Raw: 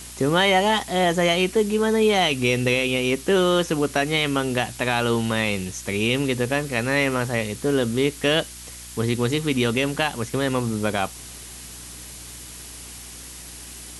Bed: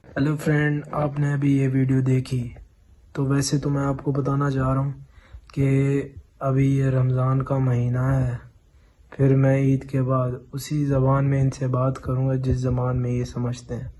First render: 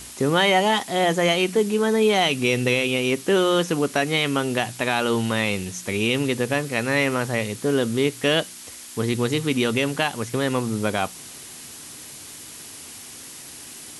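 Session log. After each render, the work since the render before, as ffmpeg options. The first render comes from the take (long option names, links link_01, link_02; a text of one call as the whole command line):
ffmpeg -i in.wav -af "bandreject=frequency=60:width_type=h:width=4,bandreject=frequency=120:width_type=h:width=4,bandreject=frequency=180:width_type=h:width=4" out.wav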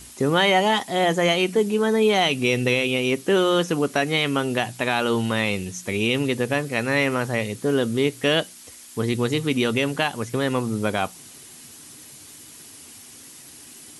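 ffmpeg -i in.wav -af "afftdn=noise_reduction=6:noise_floor=-40" out.wav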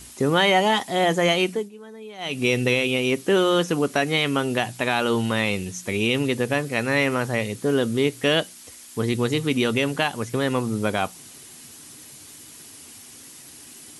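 ffmpeg -i in.wav -filter_complex "[0:a]asplit=3[link_01][link_02][link_03];[link_01]atrim=end=1.7,asetpts=PTS-STARTPTS,afade=type=out:start_time=1.43:duration=0.27:silence=0.0891251[link_04];[link_02]atrim=start=1.7:end=2.18,asetpts=PTS-STARTPTS,volume=-21dB[link_05];[link_03]atrim=start=2.18,asetpts=PTS-STARTPTS,afade=type=in:duration=0.27:silence=0.0891251[link_06];[link_04][link_05][link_06]concat=n=3:v=0:a=1" out.wav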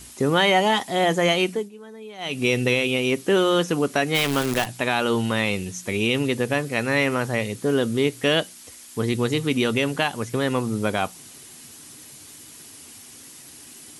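ffmpeg -i in.wav -filter_complex "[0:a]asplit=3[link_01][link_02][link_03];[link_01]afade=type=out:start_time=4.14:duration=0.02[link_04];[link_02]acrusher=bits=5:dc=4:mix=0:aa=0.000001,afade=type=in:start_time=4.14:duration=0.02,afade=type=out:start_time=4.65:duration=0.02[link_05];[link_03]afade=type=in:start_time=4.65:duration=0.02[link_06];[link_04][link_05][link_06]amix=inputs=3:normalize=0" out.wav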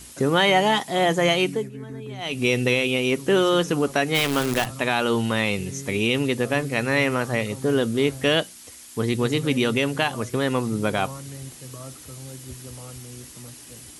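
ffmpeg -i in.wav -i bed.wav -filter_complex "[1:a]volume=-17.5dB[link_01];[0:a][link_01]amix=inputs=2:normalize=0" out.wav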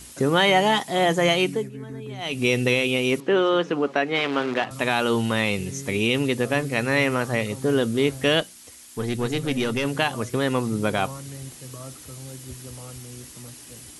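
ffmpeg -i in.wav -filter_complex "[0:a]asettb=1/sr,asplit=3[link_01][link_02][link_03];[link_01]atrim=end=3.204[link_04];[link_02]atrim=start=3.2:end=4.71,asetpts=PTS-STARTPTS,afade=type=in:duration=0.004:curve=qsin,afade=type=out:start_time=1.506:duration=0.004:curve=qsin,highpass=240,lowpass=2900[link_05];[link_03]atrim=start=4.706[link_06];[link_04][link_05]acrossfade=duration=0.004:curve1=hsin:curve2=qsin[link_07];[link_07][link_06]acrossfade=duration=0.004:curve1=qsin:curve2=hsin,asettb=1/sr,asplit=3[link_08][link_09][link_10];[link_08]atrim=end=8.404[link_11];[link_09]atrim=start=8.4:end=9.85,asetpts=PTS-STARTPTS,afade=type=in:duration=0.004:curve=qsin,afade=type=out:start_time=1.446:duration=0.004:curve=qsin,aeval=exprs='(tanh(3.98*val(0)+0.5)-tanh(0.5))/3.98':channel_layout=same[link_12];[link_10]atrim=start=9.846[link_13];[link_11][link_12]acrossfade=duration=0.004:curve1=hsin:curve2=qsin[link_14];[link_14][link_13]acrossfade=duration=0.004:curve1=qsin:curve2=hsin" out.wav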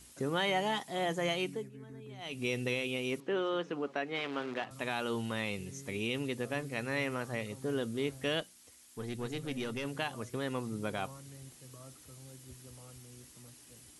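ffmpeg -i in.wav -af "volume=-13dB" out.wav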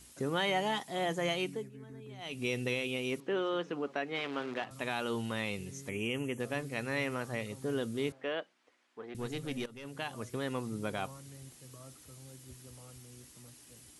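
ffmpeg -i in.wav -filter_complex "[0:a]asettb=1/sr,asplit=3[link_01][link_02][link_03];[link_01]atrim=end=5.894[link_04];[link_02]atrim=start=5.89:end=6.4,asetpts=PTS-STARTPTS,afade=type=in:duration=0.004:curve=qsin,afade=type=out:start_time=0.506:duration=0.004:curve=qsin,asuperstop=centerf=4400:order=12:qfactor=1.7[link_05];[link_03]atrim=start=6.396[link_06];[link_04][link_05]acrossfade=duration=0.004:curve1=hsin:curve2=qsin[link_07];[link_07][link_06]acrossfade=duration=0.004:curve1=qsin:curve2=hsin,asettb=1/sr,asplit=3[link_08][link_09][link_10];[link_08]atrim=end=8.124[link_11];[link_09]atrim=start=8.12:end=9.15,asetpts=PTS-STARTPTS,afade=type=in:duration=0.004:curve=qsin,afade=type=out:start_time=1.026:duration=0.004:curve=qsin,highpass=380,lowpass=2000[link_12];[link_10]atrim=start=9.146[link_13];[link_11][link_12]acrossfade=duration=0.004:curve1=hsin:curve2=qsin[link_14];[link_14][link_13]acrossfade=duration=0.004:curve1=qsin:curve2=hsin,asplit=2[link_15][link_16];[link_15]atrim=end=9.66,asetpts=PTS-STARTPTS,afade=type=out:start_time=9.656:duration=0.004:curve=hsin:silence=0.133352[link_17];[link_16]atrim=start=9.66,asetpts=PTS-STARTPTS,afade=type=in:duration=0.57:silence=0.133352[link_18];[link_17][link_18]concat=n=2:v=0:a=1" out.wav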